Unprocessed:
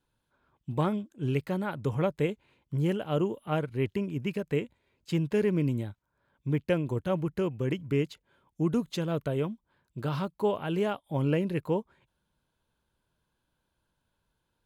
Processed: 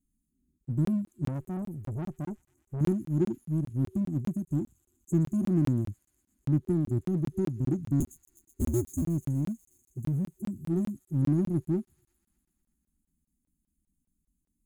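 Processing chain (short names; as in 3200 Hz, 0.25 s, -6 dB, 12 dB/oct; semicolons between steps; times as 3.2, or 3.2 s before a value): 8–9.02 cycle switcher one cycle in 2, inverted; FFT band-reject 380–6300 Hz; envelope flanger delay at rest 4.3 ms, full sweep at -26.5 dBFS; in parallel at -6 dB: hard clip -35.5 dBFS, distortion -6 dB; 1.28–2.81 on the sum: tube stage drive 33 dB, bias 0.4; on a send: thin delay 0.122 s, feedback 77%, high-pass 3900 Hz, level -11.5 dB; on the sum: crackling interface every 0.20 s, samples 1024, zero; gain +2 dB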